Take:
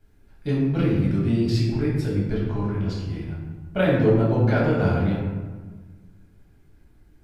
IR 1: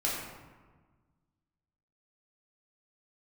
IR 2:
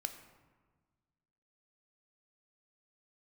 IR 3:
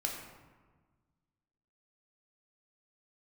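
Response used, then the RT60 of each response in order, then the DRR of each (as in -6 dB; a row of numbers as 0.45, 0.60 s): 1; 1.4, 1.4, 1.4 s; -6.0, 7.0, -0.5 dB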